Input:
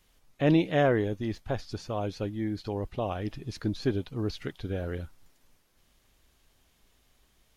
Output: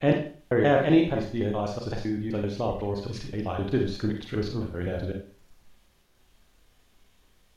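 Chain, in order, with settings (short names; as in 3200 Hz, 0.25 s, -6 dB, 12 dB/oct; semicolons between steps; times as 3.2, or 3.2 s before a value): slices in reverse order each 0.128 s, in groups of 4; high shelf 5400 Hz -4.5 dB; Schroeder reverb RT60 0.43 s, combs from 31 ms, DRR 1.5 dB; gain +1.5 dB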